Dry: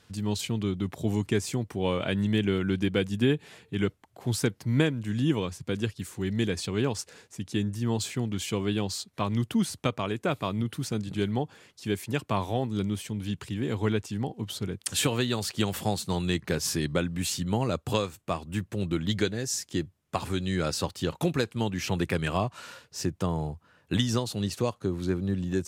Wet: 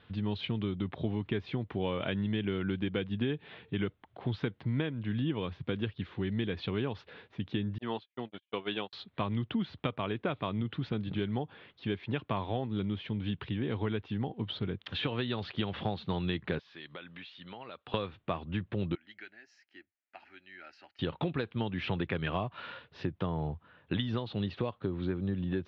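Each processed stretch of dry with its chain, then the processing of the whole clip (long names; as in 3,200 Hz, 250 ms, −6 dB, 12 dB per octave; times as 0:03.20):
0:07.78–0:08.93: noise gate −29 dBFS, range −56 dB + meter weighting curve A
0:16.59–0:17.94: high-pass filter 1,400 Hz 6 dB per octave + downward compressor 4 to 1, threshold −43 dBFS
0:18.95–0:20.99: Bessel low-pass filter 9,300 Hz + first difference + phaser with its sweep stopped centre 720 Hz, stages 8
whole clip: downward compressor 4 to 1, threshold −30 dBFS; elliptic low-pass filter 3,600 Hz, stop band 60 dB; level +1.5 dB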